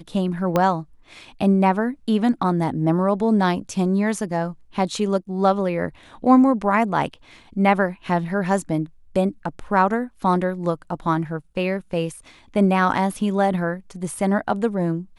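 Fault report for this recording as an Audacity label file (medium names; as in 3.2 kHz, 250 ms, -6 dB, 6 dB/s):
0.560000	0.560000	pop -7 dBFS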